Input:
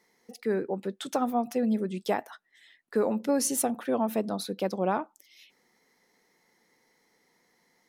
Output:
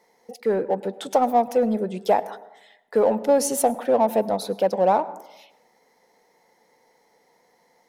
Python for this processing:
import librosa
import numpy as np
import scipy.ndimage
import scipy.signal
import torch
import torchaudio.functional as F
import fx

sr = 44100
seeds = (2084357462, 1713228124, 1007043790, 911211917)

p1 = fx.band_shelf(x, sr, hz=660.0, db=9.5, octaves=1.3)
p2 = np.clip(10.0 ** (24.0 / 20.0) * p1, -1.0, 1.0) / 10.0 ** (24.0 / 20.0)
p3 = p1 + (p2 * librosa.db_to_amplitude(-9.5))
y = fx.rev_plate(p3, sr, seeds[0], rt60_s=0.96, hf_ratio=0.35, predelay_ms=90, drr_db=17.5)